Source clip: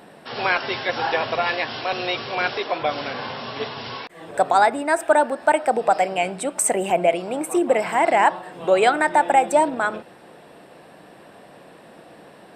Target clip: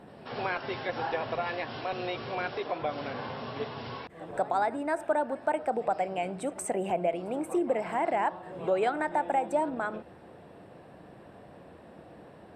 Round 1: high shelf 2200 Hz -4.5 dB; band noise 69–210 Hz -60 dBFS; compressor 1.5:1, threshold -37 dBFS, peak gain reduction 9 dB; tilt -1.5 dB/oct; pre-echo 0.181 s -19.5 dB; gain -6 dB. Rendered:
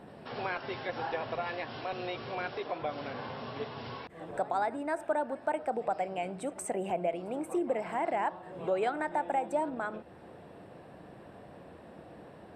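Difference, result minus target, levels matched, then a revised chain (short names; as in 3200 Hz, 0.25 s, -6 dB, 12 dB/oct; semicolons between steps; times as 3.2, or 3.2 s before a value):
compressor: peak gain reduction +3 dB
high shelf 2200 Hz -4.5 dB; band noise 69–210 Hz -60 dBFS; compressor 1.5:1, threshold -27.5 dBFS, peak gain reduction 6 dB; tilt -1.5 dB/oct; pre-echo 0.181 s -19.5 dB; gain -6 dB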